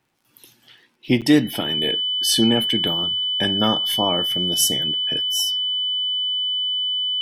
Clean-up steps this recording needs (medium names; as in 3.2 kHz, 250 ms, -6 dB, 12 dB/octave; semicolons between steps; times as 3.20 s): de-click; band-stop 3 kHz, Q 30; interpolate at 1.21 s, 7.7 ms